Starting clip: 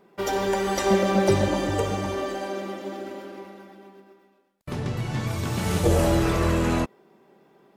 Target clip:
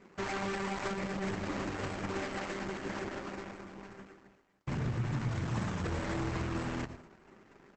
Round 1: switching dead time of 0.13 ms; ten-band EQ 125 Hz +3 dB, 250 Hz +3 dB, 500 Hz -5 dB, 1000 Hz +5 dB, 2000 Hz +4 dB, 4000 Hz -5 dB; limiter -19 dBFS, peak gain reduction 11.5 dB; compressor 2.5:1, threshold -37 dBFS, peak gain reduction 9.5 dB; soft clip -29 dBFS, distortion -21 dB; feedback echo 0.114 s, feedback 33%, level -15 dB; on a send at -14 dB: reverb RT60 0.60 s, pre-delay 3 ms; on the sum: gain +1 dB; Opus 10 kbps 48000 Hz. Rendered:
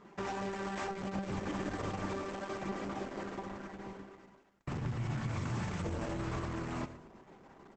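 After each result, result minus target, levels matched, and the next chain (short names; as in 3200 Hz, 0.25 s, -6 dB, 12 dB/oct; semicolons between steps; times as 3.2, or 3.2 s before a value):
switching dead time: distortion -9 dB; compressor: peak gain reduction +5 dB
switching dead time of 0.39 ms; ten-band EQ 125 Hz +3 dB, 250 Hz +3 dB, 500 Hz -5 dB, 1000 Hz +5 dB, 2000 Hz +4 dB, 4000 Hz -5 dB; limiter -19 dBFS, peak gain reduction 12.5 dB; compressor 2.5:1, threshold -37 dBFS, peak gain reduction 9.5 dB; soft clip -29 dBFS, distortion -20 dB; feedback echo 0.114 s, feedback 33%, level -15 dB; on a send at -14 dB: reverb RT60 0.60 s, pre-delay 3 ms; on the sum: gain +1 dB; Opus 10 kbps 48000 Hz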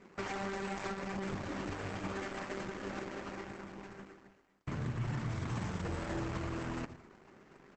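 compressor: peak gain reduction +5 dB
switching dead time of 0.39 ms; ten-band EQ 125 Hz +3 dB, 250 Hz +3 dB, 500 Hz -5 dB, 1000 Hz +5 dB, 2000 Hz +4 dB, 4000 Hz -5 dB; limiter -19 dBFS, peak gain reduction 12.5 dB; compressor 2.5:1, threshold -29 dBFS, peak gain reduction 4.5 dB; soft clip -29 dBFS, distortion -14 dB; feedback echo 0.114 s, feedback 33%, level -15 dB; on a send at -14 dB: reverb RT60 0.60 s, pre-delay 3 ms; on the sum: gain +1 dB; Opus 10 kbps 48000 Hz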